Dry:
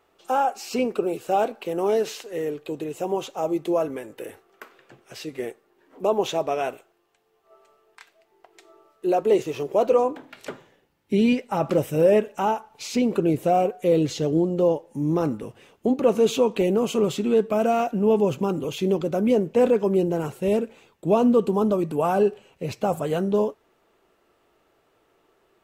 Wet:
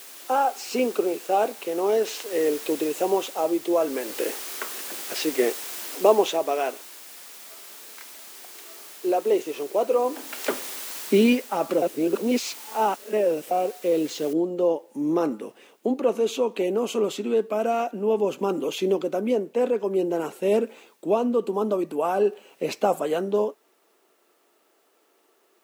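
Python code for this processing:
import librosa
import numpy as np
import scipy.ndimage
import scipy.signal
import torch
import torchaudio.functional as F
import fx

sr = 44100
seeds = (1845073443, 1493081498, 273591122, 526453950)

y = fx.noise_floor_step(x, sr, seeds[0], at_s=14.33, before_db=-44, after_db=-69, tilt_db=0.0)
y = fx.edit(y, sr, fx.reverse_span(start_s=11.82, length_s=1.69), tone=tone)
y = scipy.signal.sosfilt(scipy.signal.butter(4, 240.0, 'highpass', fs=sr, output='sos'), y)
y = fx.rider(y, sr, range_db=10, speed_s=0.5)
y = F.gain(torch.from_numpy(y), -1.0).numpy()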